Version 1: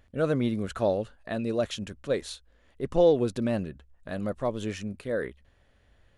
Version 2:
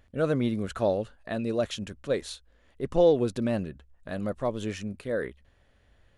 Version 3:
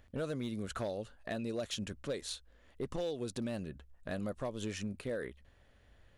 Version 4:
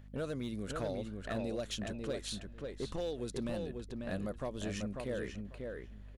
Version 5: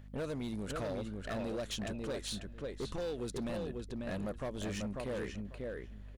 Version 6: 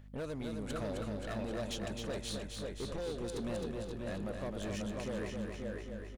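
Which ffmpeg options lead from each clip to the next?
ffmpeg -i in.wav -af anull out.wav
ffmpeg -i in.wav -filter_complex "[0:a]acrossover=split=3600[link_01][link_02];[link_01]acompressor=threshold=-33dB:ratio=8[link_03];[link_03][link_02]amix=inputs=2:normalize=0,volume=29dB,asoftclip=hard,volume=-29dB,volume=-1dB" out.wav
ffmpeg -i in.wav -filter_complex "[0:a]aeval=exprs='val(0)+0.00282*(sin(2*PI*50*n/s)+sin(2*PI*2*50*n/s)/2+sin(2*PI*3*50*n/s)/3+sin(2*PI*4*50*n/s)/4+sin(2*PI*5*50*n/s)/5)':channel_layout=same,asplit=2[link_01][link_02];[link_02]adelay=543,lowpass=frequency=3000:poles=1,volume=-4dB,asplit=2[link_03][link_04];[link_04]adelay=543,lowpass=frequency=3000:poles=1,volume=0.17,asplit=2[link_05][link_06];[link_06]adelay=543,lowpass=frequency=3000:poles=1,volume=0.17[link_07];[link_03][link_05][link_07]amix=inputs=3:normalize=0[link_08];[link_01][link_08]amix=inputs=2:normalize=0,volume=-1dB" out.wav
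ffmpeg -i in.wav -af "asoftclip=type=hard:threshold=-35dB,volume=1.5dB" out.wav
ffmpeg -i in.wav -af "aecho=1:1:262|524|786|1048|1310|1572|1834|2096:0.562|0.337|0.202|0.121|0.0729|0.0437|0.0262|0.0157,volume=-2dB" out.wav

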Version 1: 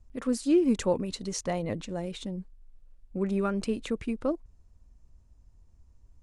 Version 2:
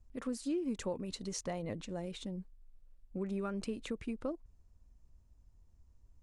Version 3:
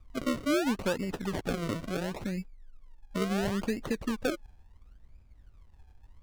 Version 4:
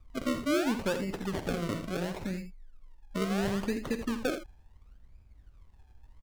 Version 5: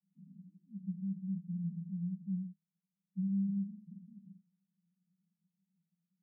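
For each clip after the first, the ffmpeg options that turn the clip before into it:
ffmpeg -i in.wav -af "acompressor=threshold=-29dB:ratio=3,volume=-5.5dB" out.wav
ffmpeg -i in.wav -af "acrusher=samples=36:mix=1:aa=0.000001:lfo=1:lforange=36:lforate=0.72,highshelf=frequency=9100:gain=-7.5,volume=7.5dB" out.wav
ffmpeg -i in.wav -af "aecho=1:1:47|68|81:0.211|0.141|0.299,volume=-1dB" out.wav
ffmpeg -i in.wav -af "asuperpass=centerf=180:order=8:qfactor=4.4" out.wav

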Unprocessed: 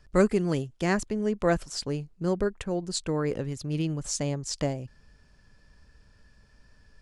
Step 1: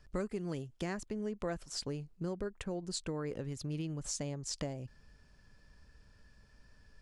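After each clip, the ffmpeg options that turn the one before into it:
ffmpeg -i in.wav -af "acompressor=threshold=-32dB:ratio=4,volume=-3.5dB" out.wav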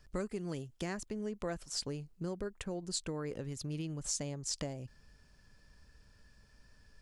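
ffmpeg -i in.wav -af "highshelf=frequency=4400:gain=5.5,volume=-1dB" out.wav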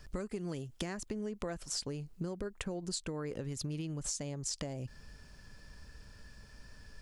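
ffmpeg -i in.wav -af "acompressor=threshold=-44dB:ratio=6,volume=8.5dB" out.wav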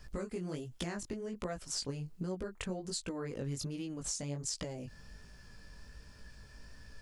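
ffmpeg -i in.wav -af "flanger=delay=16:depth=5.9:speed=1.3,volume=3dB" out.wav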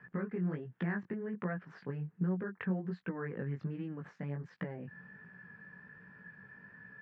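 ffmpeg -i in.wav -af "highpass=frequency=130:width=0.5412,highpass=frequency=130:width=1.3066,equalizer=frequency=180:width_type=q:width=4:gain=8,equalizer=frequency=280:width_type=q:width=4:gain=-5,equalizer=frequency=610:width_type=q:width=4:gain=-7,equalizer=frequency=1700:width_type=q:width=4:gain=10,lowpass=frequency=2000:width=0.5412,lowpass=frequency=2000:width=1.3066,volume=1dB" out.wav

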